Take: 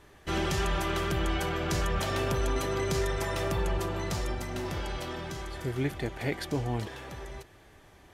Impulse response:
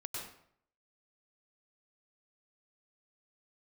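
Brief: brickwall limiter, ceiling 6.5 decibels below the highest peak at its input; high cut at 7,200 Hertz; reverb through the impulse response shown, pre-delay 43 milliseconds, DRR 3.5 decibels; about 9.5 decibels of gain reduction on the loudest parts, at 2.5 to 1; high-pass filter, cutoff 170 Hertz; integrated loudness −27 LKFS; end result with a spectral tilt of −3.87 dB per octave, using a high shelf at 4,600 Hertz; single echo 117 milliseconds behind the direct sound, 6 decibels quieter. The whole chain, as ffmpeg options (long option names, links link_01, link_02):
-filter_complex "[0:a]highpass=170,lowpass=7200,highshelf=frequency=4600:gain=-5.5,acompressor=threshold=-42dB:ratio=2.5,alimiter=level_in=10dB:limit=-24dB:level=0:latency=1,volume=-10dB,aecho=1:1:117:0.501,asplit=2[link_01][link_02];[1:a]atrim=start_sample=2205,adelay=43[link_03];[link_02][link_03]afir=irnorm=-1:irlink=0,volume=-3.5dB[link_04];[link_01][link_04]amix=inputs=2:normalize=0,volume=13.5dB"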